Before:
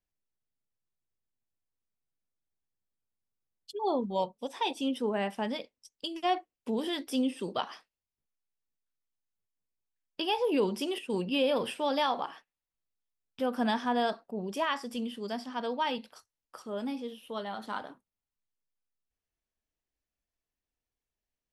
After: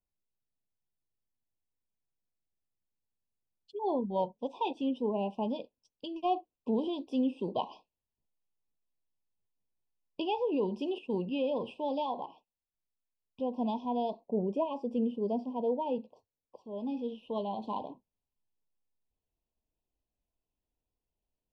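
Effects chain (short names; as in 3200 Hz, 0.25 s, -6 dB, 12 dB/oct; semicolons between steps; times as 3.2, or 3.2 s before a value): 14.27–16.56 graphic EQ 125/250/500/4000 Hz +8/+4/+10/-5 dB; vocal rider within 5 dB 0.5 s; brick-wall FIR band-stop 1100–2400 Hz; tape spacing loss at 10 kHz 33 dB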